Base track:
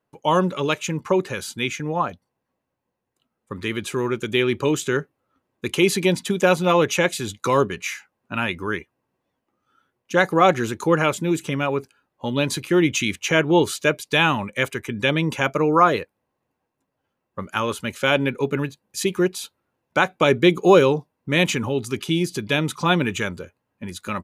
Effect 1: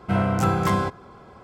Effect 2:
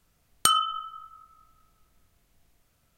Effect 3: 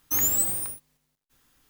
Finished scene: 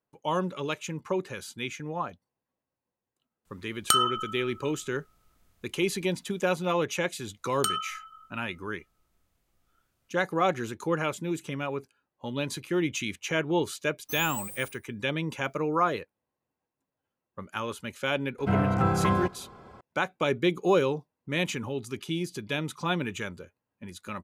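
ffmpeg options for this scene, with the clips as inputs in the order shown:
ffmpeg -i bed.wav -i cue0.wav -i cue1.wav -i cue2.wav -filter_complex "[2:a]asplit=2[link_01][link_02];[0:a]volume=-9.5dB[link_03];[3:a]aecho=1:1:68|136|204:0.178|0.0658|0.0243[link_04];[1:a]acrossover=split=2800[link_05][link_06];[link_06]acompressor=threshold=-51dB:ratio=4:attack=1:release=60[link_07];[link_05][link_07]amix=inputs=2:normalize=0[link_08];[link_01]atrim=end=2.97,asetpts=PTS-STARTPTS,volume=-1dB,afade=type=in:duration=0.004:curve=hsin,afade=type=out:start_time=2.966:duration=0.004:curve=hsin,adelay=152145S[link_09];[link_02]atrim=end=2.97,asetpts=PTS-STARTPTS,volume=-7.5dB,afade=type=in:duration=0.004:curve=hsin,afade=type=out:start_time=2.966:duration=0.004:curve=hsin,adelay=7190[link_10];[link_04]atrim=end=1.69,asetpts=PTS-STARTPTS,volume=-14dB,afade=type=in:duration=0.004:curve=hsin,afade=type=out:start_time=1.686:duration=0.004:curve=hsin,adelay=13980[link_11];[link_08]atrim=end=1.43,asetpts=PTS-STARTPTS,volume=-3dB,afade=type=in:duration=0.004:curve=hsin,afade=type=out:start_time=1.426:duration=0.004:curve=hsin,adelay=18380[link_12];[link_03][link_09][link_10][link_11][link_12]amix=inputs=5:normalize=0" out.wav

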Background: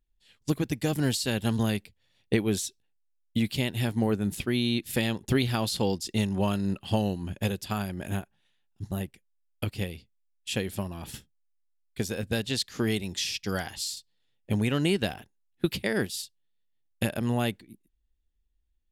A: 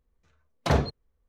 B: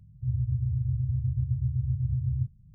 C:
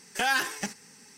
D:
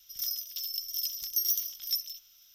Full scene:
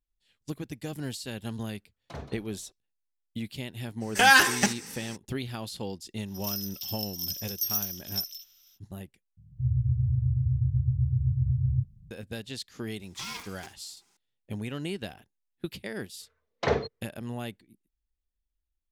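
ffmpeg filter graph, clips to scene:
ffmpeg -i bed.wav -i cue0.wav -i cue1.wav -i cue2.wav -i cue3.wav -filter_complex "[1:a]asplit=2[link_01][link_02];[3:a]asplit=2[link_03][link_04];[0:a]volume=-9dB[link_05];[link_01]asplit=5[link_06][link_07][link_08][link_09][link_10];[link_07]adelay=175,afreqshift=-32,volume=-10dB[link_11];[link_08]adelay=350,afreqshift=-64,volume=-18dB[link_12];[link_09]adelay=525,afreqshift=-96,volume=-25.9dB[link_13];[link_10]adelay=700,afreqshift=-128,volume=-33.9dB[link_14];[link_06][link_11][link_12][link_13][link_14]amix=inputs=5:normalize=0[link_15];[link_03]dynaudnorm=framelen=130:gausssize=3:maxgain=9.5dB[link_16];[2:a]dynaudnorm=framelen=130:gausssize=3:maxgain=4dB[link_17];[link_04]aeval=exprs='val(0)*sgn(sin(2*PI*590*n/s))':channel_layout=same[link_18];[link_02]highpass=110,equalizer=frequency=160:width_type=q:width=4:gain=-8,equalizer=frequency=280:width_type=q:width=4:gain=-5,equalizer=frequency=450:width_type=q:width=4:gain=9,equalizer=frequency=2000:width_type=q:width=4:gain=6,lowpass=frequency=6200:width=0.5412,lowpass=frequency=6200:width=1.3066[link_19];[link_05]asplit=2[link_20][link_21];[link_20]atrim=end=9.374[link_22];[link_17]atrim=end=2.74,asetpts=PTS-STARTPTS,volume=-2dB[link_23];[link_21]atrim=start=12.106[link_24];[link_15]atrim=end=1.28,asetpts=PTS-STARTPTS,volume=-18dB,afade=type=in:duration=0.004:curve=hsin,afade=type=out:start_time=1.276:duration=0.004:curve=hsin,adelay=1440[link_25];[link_16]atrim=end=1.17,asetpts=PTS-STARTPTS,volume=-0.5dB,afade=type=in:duration=0.02,afade=type=out:start_time=1.15:duration=0.02,adelay=4000[link_26];[4:a]atrim=end=2.54,asetpts=PTS-STARTPTS,volume=-1dB,afade=type=in:duration=0.05,afade=type=out:start_time=2.49:duration=0.05,adelay=6250[link_27];[link_18]atrim=end=1.17,asetpts=PTS-STARTPTS,volume=-15.5dB,afade=type=in:duration=0.004:curve=hsin,afade=type=out:start_time=1.166:duration=0.004:curve=hsin,adelay=573300S[link_28];[link_19]atrim=end=1.28,asetpts=PTS-STARTPTS,volume=-3dB,afade=type=in:duration=0.004:curve=hsin,afade=type=out:start_time=1.276:duration=0.004:curve=hsin,adelay=15970[link_29];[link_22][link_23]acrossfade=duration=0.004:curve1=hsin:curve2=hsin[link_30];[link_30][link_24]acrossfade=duration=0.004:curve1=hsin:curve2=hsin[link_31];[link_31][link_25][link_26][link_27][link_28][link_29]amix=inputs=6:normalize=0" out.wav

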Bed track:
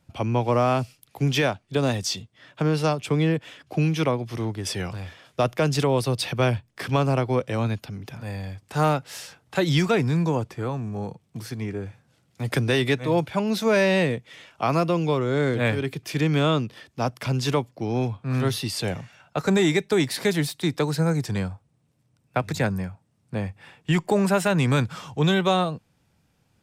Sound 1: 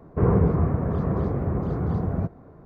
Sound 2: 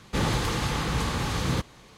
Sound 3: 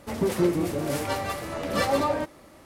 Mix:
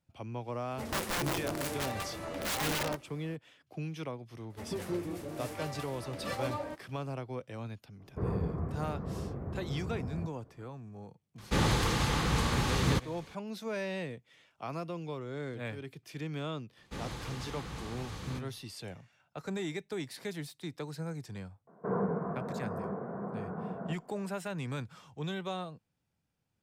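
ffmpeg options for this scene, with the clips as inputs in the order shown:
ffmpeg -i bed.wav -i cue0.wav -i cue1.wav -i cue2.wav -filter_complex "[3:a]asplit=2[link_01][link_02];[1:a]asplit=2[link_03][link_04];[2:a]asplit=2[link_05][link_06];[0:a]volume=-16.5dB[link_07];[link_01]aeval=exprs='(mod(10.6*val(0)+1,2)-1)/10.6':channel_layout=same[link_08];[link_04]highpass=frequency=170:width=0.5412,highpass=frequency=170:width=1.3066,equalizer=frequency=200:width_type=q:width=4:gain=6,equalizer=frequency=300:width_type=q:width=4:gain=-7,equalizer=frequency=460:width_type=q:width=4:gain=5,equalizer=frequency=690:width_type=q:width=4:gain=7,equalizer=frequency=990:width_type=q:width=4:gain=6,equalizer=frequency=1500:width_type=q:width=4:gain=9,lowpass=frequency=2000:width=0.5412,lowpass=frequency=2000:width=1.3066[link_09];[link_08]atrim=end=2.65,asetpts=PTS-STARTPTS,volume=-7.5dB,afade=type=in:duration=0.004:curve=hsin,afade=type=out:start_time=2.646:duration=0.004:curve=hsin,adelay=710[link_10];[link_02]atrim=end=2.65,asetpts=PTS-STARTPTS,volume=-12.5dB,afade=type=in:duration=0.004:curve=hsin,afade=type=out:start_time=2.646:duration=0.004:curve=hsin,adelay=4500[link_11];[link_03]atrim=end=2.65,asetpts=PTS-STARTPTS,volume=-13.5dB,afade=type=in:duration=0.004:curve=hsin,afade=type=out:start_time=2.646:duration=0.004:curve=hsin,adelay=8000[link_12];[link_05]atrim=end=1.97,asetpts=PTS-STARTPTS,volume=-2dB,afade=type=in:duration=0.004:curve=hsin,afade=type=out:start_time=1.966:duration=0.004:curve=hsin,adelay=501858S[link_13];[link_06]atrim=end=1.97,asetpts=PTS-STARTPTS,volume=-15dB,afade=type=in:duration=0.004:curve=hsin,afade=type=out:start_time=1.966:duration=0.004:curve=hsin,adelay=16780[link_14];[link_09]atrim=end=2.65,asetpts=PTS-STARTPTS,volume=-12.5dB,afade=type=in:duration=0.004:curve=hsin,afade=type=out:start_time=2.646:duration=0.004:curve=hsin,adelay=21670[link_15];[link_07][link_10][link_11][link_12][link_13][link_14][link_15]amix=inputs=7:normalize=0" out.wav

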